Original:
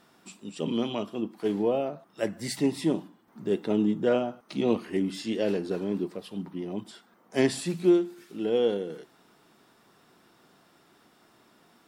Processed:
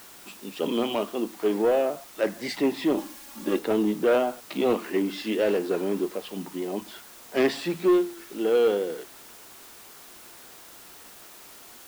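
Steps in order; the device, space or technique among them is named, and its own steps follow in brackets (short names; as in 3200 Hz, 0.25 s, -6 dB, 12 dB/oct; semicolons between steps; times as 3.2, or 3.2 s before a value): tape answering machine (BPF 330–3400 Hz; soft clip -22.5 dBFS, distortion -14 dB; wow and flutter; white noise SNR 21 dB); 2.97–3.59 comb 3.6 ms, depth 93%; gain +7.5 dB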